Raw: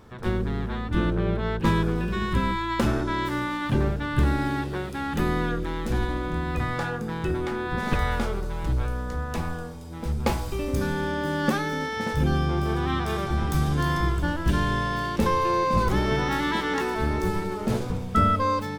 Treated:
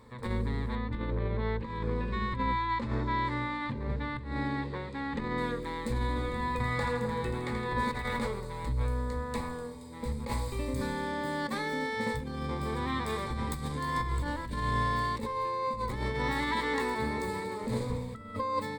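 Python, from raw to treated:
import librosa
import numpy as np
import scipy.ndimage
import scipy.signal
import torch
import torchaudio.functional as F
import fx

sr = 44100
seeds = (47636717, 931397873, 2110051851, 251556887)

y = fx.air_absorb(x, sr, metres=130.0, at=(0.75, 5.38))
y = fx.echo_split(y, sr, split_hz=750.0, low_ms=253, high_ms=82, feedback_pct=52, wet_db=-5.5, at=(6.15, 8.26), fade=0.02)
y = fx.highpass(y, sr, hz=86.0, slope=12, at=(16.93, 17.64))
y = fx.low_shelf(y, sr, hz=260.0, db=-2.5)
y = fx.over_compress(y, sr, threshold_db=-26.0, ratio=-0.5)
y = fx.ripple_eq(y, sr, per_octave=0.98, db=12)
y = F.gain(torch.from_numpy(y), -6.5).numpy()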